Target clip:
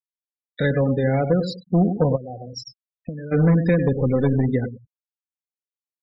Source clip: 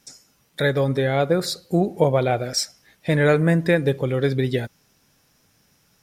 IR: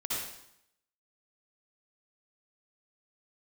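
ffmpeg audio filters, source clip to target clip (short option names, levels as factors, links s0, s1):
-filter_complex "[0:a]asettb=1/sr,asplit=3[s0][s1][s2];[s0]atrim=end=3.914[s3];[s1]atrim=start=3.91:end=4.35,asetpts=PTS-STARTPTS,afade=t=in:d=0.004:c=qsin,afade=t=out:st=0.436:d=0.004:c=qsin,aeval=exprs='val(0)+0.5*0.0376*sgn(val(0))':c=same[s4];[s2]atrim=start=4.346[s5];[s3][s4]acrossfade=d=0.004:c1=hsin:c2=qsin[s6];[s6][s5]acrossfade=d=0.004:c1=qsin:c2=hsin,bass=f=250:g=9,treble=f=4000:g=-5,acrossover=split=320[s7][s8];[s8]acompressor=threshold=0.141:ratio=10[s9];[s7][s9]amix=inputs=2:normalize=0,aecho=1:1:98|196|294:0.335|0.077|0.0177,asplit=3[s10][s11][s12];[s10]afade=t=out:st=2.15:d=0.02[s13];[s11]acompressor=threshold=0.0501:ratio=16,afade=t=in:st=2.15:d=0.02,afade=t=out:st=3.31:d=0.02[s14];[s12]afade=t=in:st=3.31:d=0.02[s15];[s13][s14][s15]amix=inputs=3:normalize=0,asoftclip=type=hard:threshold=0.355,adynamicequalizer=threshold=0.00501:dfrequency=2900:dqfactor=2:tfrequency=2900:tqfactor=2:attack=5:release=100:ratio=0.375:range=2.5:mode=cutabove:tftype=bell,afftfilt=real='re*gte(hypot(re,im),0.0562)':imag='im*gte(hypot(re,im),0.0562)':win_size=1024:overlap=0.75,aecho=1:1:4:0.44,volume=0.794"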